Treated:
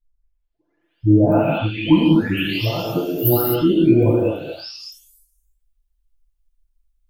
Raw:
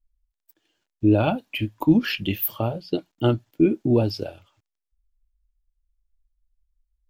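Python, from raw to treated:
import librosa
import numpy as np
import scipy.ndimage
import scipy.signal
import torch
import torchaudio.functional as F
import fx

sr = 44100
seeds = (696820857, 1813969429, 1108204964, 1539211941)

y = fx.spec_delay(x, sr, highs='late', ms=823)
y = fx.rev_gated(y, sr, seeds[0], gate_ms=270, shape='flat', drr_db=-2.5)
y = y * librosa.db_to_amplitude(3.0)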